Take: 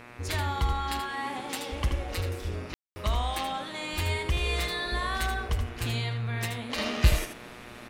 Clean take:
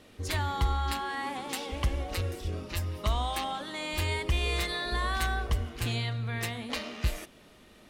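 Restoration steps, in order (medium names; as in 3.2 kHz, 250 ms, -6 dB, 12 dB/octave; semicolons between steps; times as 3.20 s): de-hum 120.4 Hz, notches 22; room tone fill 2.74–2.96 s; inverse comb 79 ms -7.5 dB; gain correction -8 dB, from 6.78 s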